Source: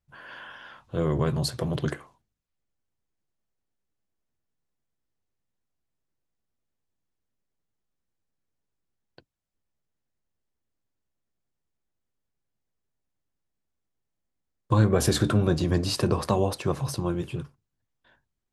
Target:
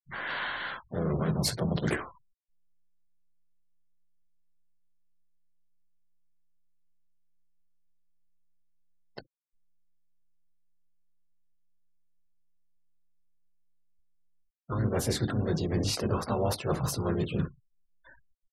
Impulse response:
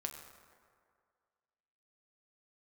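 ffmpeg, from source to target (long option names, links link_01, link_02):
-filter_complex "[0:a]aecho=1:1:19|67:0.299|0.133,areverse,acompressor=threshold=-35dB:ratio=10,areverse,asplit=4[link_01][link_02][link_03][link_04];[link_02]asetrate=22050,aresample=44100,atempo=2,volume=-16dB[link_05];[link_03]asetrate=52444,aresample=44100,atempo=0.840896,volume=-5dB[link_06];[link_04]asetrate=58866,aresample=44100,atempo=0.749154,volume=-10dB[link_07];[link_01][link_05][link_06][link_07]amix=inputs=4:normalize=0,afftfilt=real='re*gte(hypot(re,im),0.00282)':imag='im*gte(hypot(re,im),0.00282)':win_size=1024:overlap=0.75,volume=8dB"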